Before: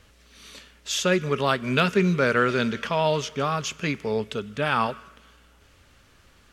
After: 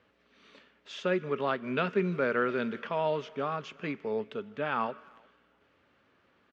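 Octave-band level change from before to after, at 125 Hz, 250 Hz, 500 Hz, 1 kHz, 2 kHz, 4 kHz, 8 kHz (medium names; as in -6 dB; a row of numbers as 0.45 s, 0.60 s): -11.5 dB, -8.0 dB, -6.0 dB, -7.5 dB, -9.0 dB, -14.5 dB, under -25 dB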